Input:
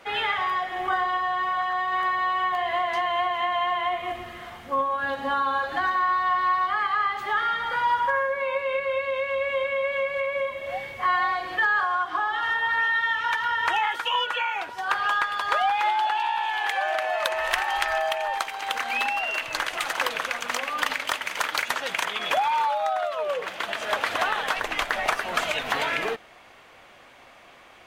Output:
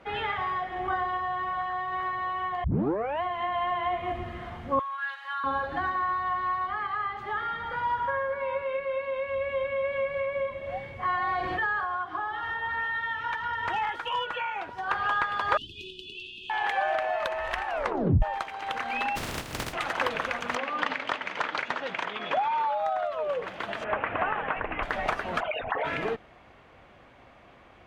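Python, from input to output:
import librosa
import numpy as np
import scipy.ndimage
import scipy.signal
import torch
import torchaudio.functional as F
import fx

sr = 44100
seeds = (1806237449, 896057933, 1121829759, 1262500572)

y = fx.highpass(x, sr, hz=1300.0, slope=24, at=(4.79, 5.44))
y = fx.echo_throw(y, sr, start_s=7.38, length_s=0.7, ms=590, feedback_pct=20, wet_db=-15.0)
y = fx.peak_eq(y, sr, hz=95.0, db=-13.0, octaves=0.77, at=(8.62, 9.28))
y = fx.env_flatten(y, sr, amount_pct=50, at=(11.27, 11.73))
y = fx.overload_stage(y, sr, gain_db=18.0, at=(13.51, 14.38))
y = fx.brickwall_bandstop(y, sr, low_hz=430.0, high_hz=2500.0, at=(15.57, 16.5))
y = fx.spec_flatten(y, sr, power=0.1, at=(19.15, 19.72), fade=0.02)
y = fx.bandpass_edges(y, sr, low_hz=160.0, high_hz=5300.0, at=(20.55, 22.78))
y = fx.cheby1_lowpass(y, sr, hz=2700.0, order=4, at=(23.84, 24.83))
y = fx.envelope_sharpen(y, sr, power=3.0, at=(25.39, 25.84), fade=0.02)
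y = fx.edit(y, sr, fx.tape_start(start_s=2.64, length_s=0.58),
    fx.tape_stop(start_s=17.66, length_s=0.56), tone=tone)
y = fx.highpass(y, sr, hz=82.0, slope=6)
y = fx.riaa(y, sr, side='playback')
y = fx.rider(y, sr, range_db=10, speed_s=2.0)
y = F.gain(torch.from_numpy(y), -4.5).numpy()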